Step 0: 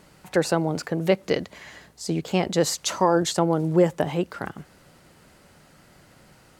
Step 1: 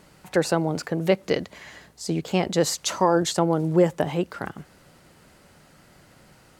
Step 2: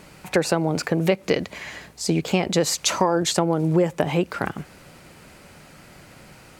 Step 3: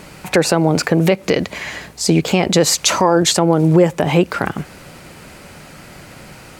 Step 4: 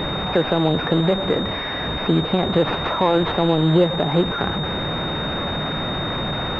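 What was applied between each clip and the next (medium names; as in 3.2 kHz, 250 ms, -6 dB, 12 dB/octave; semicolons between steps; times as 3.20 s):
no audible change
peaking EQ 2.4 kHz +6.5 dB 0.23 oct; compression 4:1, threshold -23 dBFS, peak gain reduction 9 dB; trim +6.5 dB
loudness maximiser +9.5 dB; trim -1 dB
one-bit delta coder 64 kbps, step -13 dBFS; class-D stage that switches slowly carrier 3.7 kHz; trim -4.5 dB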